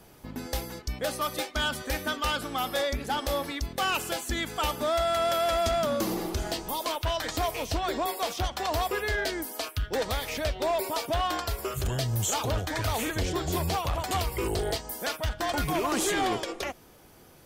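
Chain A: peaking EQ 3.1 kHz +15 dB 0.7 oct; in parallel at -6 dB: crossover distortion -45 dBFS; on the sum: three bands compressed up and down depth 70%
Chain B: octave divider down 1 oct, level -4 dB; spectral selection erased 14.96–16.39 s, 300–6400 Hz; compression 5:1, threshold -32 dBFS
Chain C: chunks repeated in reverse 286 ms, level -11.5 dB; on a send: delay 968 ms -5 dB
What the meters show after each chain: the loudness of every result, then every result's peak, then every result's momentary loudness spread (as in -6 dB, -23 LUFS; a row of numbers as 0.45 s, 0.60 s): -20.5 LUFS, -35.5 LUFS, -28.0 LUFS; -3.0 dBFS, -21.5 dBFS, -16.0 dBFS; 5 LU, 4 LU, 5 LU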